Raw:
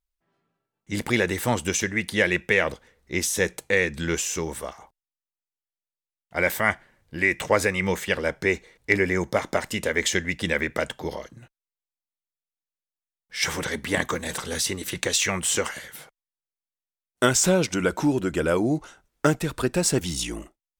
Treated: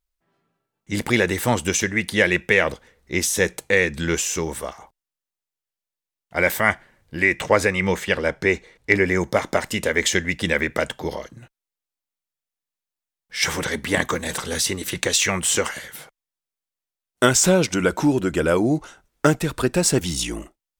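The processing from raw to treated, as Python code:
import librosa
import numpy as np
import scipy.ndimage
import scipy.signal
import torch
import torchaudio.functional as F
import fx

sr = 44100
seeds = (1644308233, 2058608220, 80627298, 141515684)

y = fx.high_shelf(x, sr, hz=9300.0, db=-8.0, at=(7.24, 9.09))
y = F.gain(torch.from_numpy(y), 3.5).numpy()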